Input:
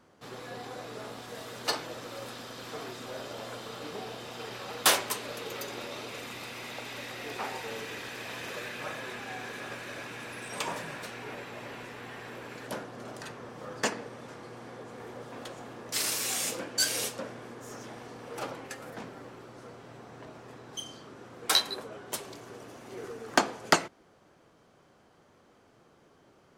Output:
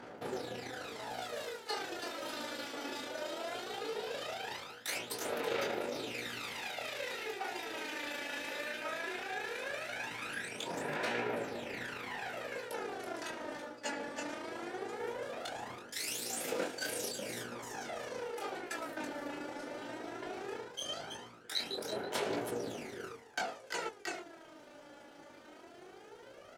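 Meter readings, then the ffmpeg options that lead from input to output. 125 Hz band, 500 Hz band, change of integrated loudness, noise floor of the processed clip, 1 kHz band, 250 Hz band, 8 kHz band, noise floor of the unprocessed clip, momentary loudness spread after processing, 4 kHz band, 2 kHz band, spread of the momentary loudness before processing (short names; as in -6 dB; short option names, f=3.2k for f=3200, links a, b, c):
-7.0 dB, -0.5 dB, -5.5 dB, -55 dBFS, -4.5 dB, -2.5 dB, -9.0 dB, -62 dBFS, 8 LU, -7.0 dB, -3.0 dB, 18 LU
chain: -filter_complex "[0:a]acrossover=split=1400[a][b];[a]volume=25dB,asoftclip=hard,volume=-25dB[c];[c][b]amix=inputs=2:normalize=0,tremolo=f=27:d=0.71,bass=f=250:g=-8,treble=f=4k:g=-3,aecho=1:1:329:0.237,areverse,acompressor=threshold=-49dB:ratio=6,areverse,aphaser=in_gain=1:out_gain=1:delay=3.5:decay=0.63:speed=0.18:type=sinusoidal,lowshelf=f=70:g=-5.5,bandreject=f=1.1k:w=5.6,flanger=delay=16.5:depth=7.3:speed=0.8,volume=13dB"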